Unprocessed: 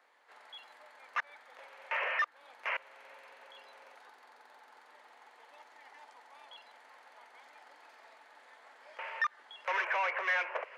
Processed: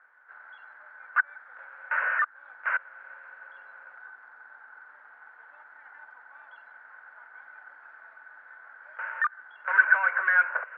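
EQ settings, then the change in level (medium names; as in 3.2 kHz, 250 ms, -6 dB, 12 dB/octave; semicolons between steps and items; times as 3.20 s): resonant low-pass 1.5 kHz, resonance Q 15; peaking EQ 390 Hz -4.5 dB 0.95 oct; -3.0 dB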